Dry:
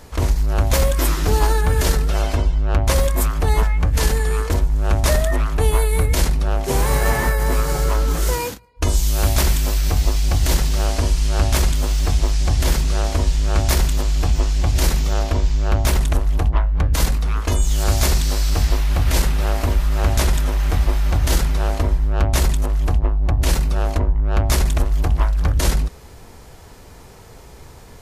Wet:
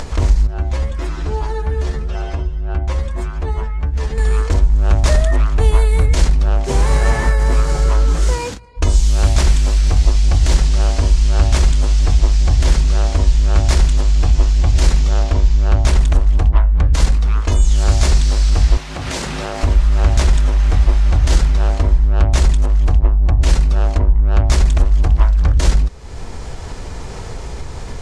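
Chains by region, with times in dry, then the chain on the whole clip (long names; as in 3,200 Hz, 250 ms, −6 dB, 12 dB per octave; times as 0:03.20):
0:00.47–0:04.18: high-shelf EQ 4,400 Hz −12 dB + stiff-string resonator 71 Hz, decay 0.23 s, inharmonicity 0.002
0:18.77–0:19.63: high-pass filter 170 Hz + downward compressor 2 to 1, threshold −27 dBFS
whole clip: low-pass filter 8,400 Hz 24 dB per octave; low-shelf EQ 68 Hz +8.5 dB; upward compression, threshold −15 dBFS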